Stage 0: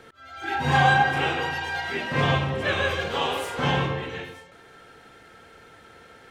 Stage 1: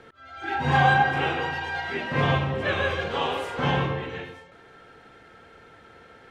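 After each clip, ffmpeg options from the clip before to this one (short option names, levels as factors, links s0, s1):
-af "aemphasis=mode=reproduction:type=50kf"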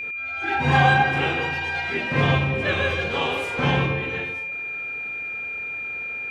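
-af "adynamicequalizer=threshold=0.0178:dfrequency=940:dqfactor=0.71:tfrequency=940:tqfactor=0.71:attack=5:release=100:ratio=0.375:range=2.5:mode=cutabove:tftype=bell,aeval=exprs='val(0)+0.0251*sin(2*PI*2400*n/s)':c=same,volume=1.58"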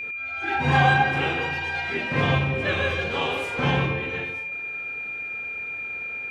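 -af "flanger=delay=9.1:depth=3.3:regen=-88:speed=0.56:shape=triangular,volume=1.41"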